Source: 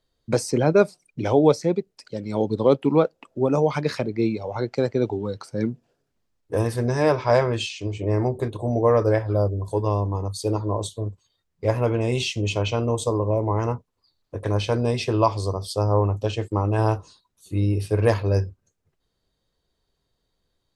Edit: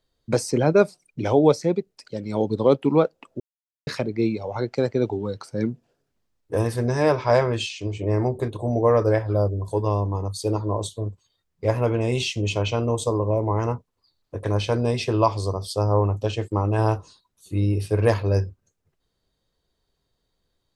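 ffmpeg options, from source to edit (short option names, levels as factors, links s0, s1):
-filter_complex "[0:a]asplit=3[s0][s1][s2];[s0]atrim=end=3.4,asetpts=PTS-STARTPTS,afade=t=out:st=3.396:d=0.004:c=hsin[s3];[s1]atrim=start=3.4:end=3.87,asetpts=PTS-STARTPTS,volume=0[s4];[s2]atrim=start=3.87,asetpts=PTS-STARTPTS,afade=t=in:d=0.004:c=hsin[s5];[s3][s4][s5]concat=n=3:v=0:a=1"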